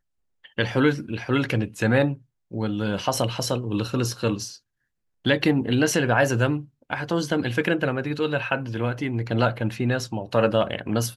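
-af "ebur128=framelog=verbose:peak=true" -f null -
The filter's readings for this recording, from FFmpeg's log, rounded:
Integrated loudness:
  I:         -24.3 LUFS
  Threshold: -34.5 LUFS
Loudness range:
  LRA:         2.5 LU
  Threshold: -44.7 LUFS
  LRA low:   -25.7 LUFS
  LRA high:  -23.3 LUFS
True peak:
  Peak:       -6.4 dBFS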